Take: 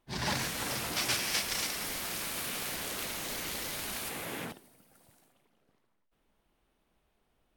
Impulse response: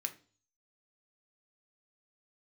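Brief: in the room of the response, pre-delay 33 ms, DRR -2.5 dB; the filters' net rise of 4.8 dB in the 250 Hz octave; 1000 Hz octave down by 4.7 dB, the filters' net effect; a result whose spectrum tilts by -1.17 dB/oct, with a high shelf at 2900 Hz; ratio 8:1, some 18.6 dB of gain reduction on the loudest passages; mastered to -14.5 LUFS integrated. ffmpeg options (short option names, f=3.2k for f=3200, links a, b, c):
-filter_complex "[0:a]equalizer=f=250:t=o:g=6.5,equalizer=f=1k:t=o:g=-7.5,highshelf=f=2.9k:g=6,acompressor=threshold=-43dB:ratio=8,asplit=2[a][b];[1:a]atrim=start_sample=2205,adelay=33[c];[b][c]afir=irnorm=-1:irlink=0,volume=2.5dB[d];[a][d]amix=inputs=2:normalize=0,volume=24.5dB"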